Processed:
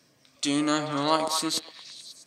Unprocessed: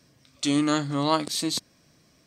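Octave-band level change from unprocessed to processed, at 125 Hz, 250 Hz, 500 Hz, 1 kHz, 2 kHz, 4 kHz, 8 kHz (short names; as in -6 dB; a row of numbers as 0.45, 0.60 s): -6.5, -3.0, +0.5, +1.0, +0.5, +0.5, +0.5 dB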